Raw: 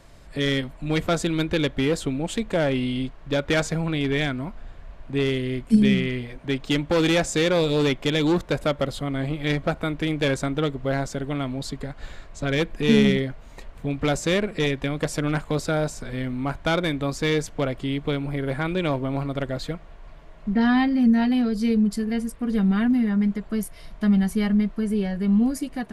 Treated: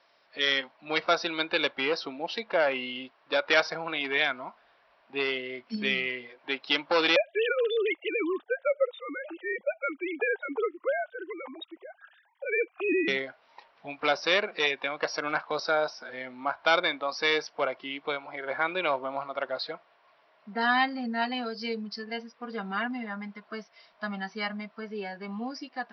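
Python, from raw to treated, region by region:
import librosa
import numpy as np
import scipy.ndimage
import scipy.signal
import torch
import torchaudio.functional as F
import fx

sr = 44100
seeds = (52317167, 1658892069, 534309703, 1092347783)

y = fx.chain(x, sr, fx.sine_speech(),
    fx.notch_cascade(direction='rising', hz=1.1), at=(7.16, 13.08))
y = scipy.signal.sosfilt(scipy.signal.cheby1(10, 1.0, 5700.0, 'lowpass', fs=sr, output='sos'), y)
y = fx.noise_reduce_blind(y, sr, reduce_db=10)
y = scipy.signal.sosfilt(scipy.signal.butter(2, 690.0, 'highpass', fs=sr, output='sos'), y)
y = y * librosa.db_to_amplitude(3.5)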